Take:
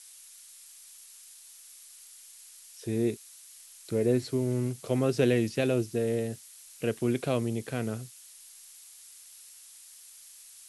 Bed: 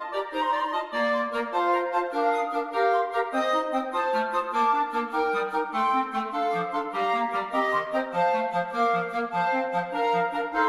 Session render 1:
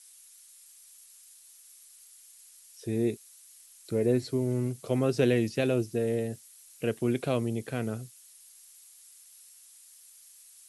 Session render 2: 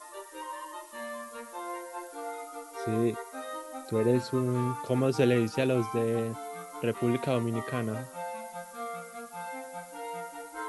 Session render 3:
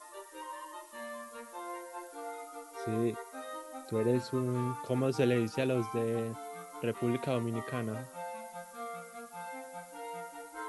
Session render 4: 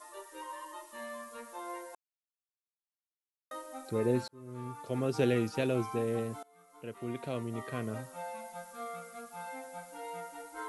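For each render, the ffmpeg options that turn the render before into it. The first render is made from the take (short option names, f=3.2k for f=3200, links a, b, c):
-af "afftdn=nr=6:nf=-52"
-filter_complex "[1:a]volume=-14.5dB[a];[0:a][a]amix=inputs=2:normalize=0"
-af "volume=-4dB"
-filter_complex "[0:a]asplit=5[a][b][c][d][e];[a]atrim=end=1.95,asetpts=PTS-STARTPTS,afade=t=out:st=1.946:d=0.004:c=hsin[f];[b]atrim=start=1.95:end=3.51,asetpts=PTS-STARTPTS,volume=0[g];[c]atrim=start=3.51:end=4.28,asetpts=PTS-STARTPTS,afade=t=in:d=0.004:c=hsin,afade=t=out:st=0.766:d=0.004:c=hsin[h];[d]atrim=start=4.28:end=6.43,asetpts=PTS-STARTPTS,afade=t=in:d=0.92,afade=t=out:st=2.146:d=0.004:c=hsin:silence=0.0668344[i];[e]atrim=start=6.43,asetpts=PTS-STARTPTS,afade=t=in:d=1.59:silence=0.0668344[j];[f][g][h][i][j]concat=n=5:v=0:a=1"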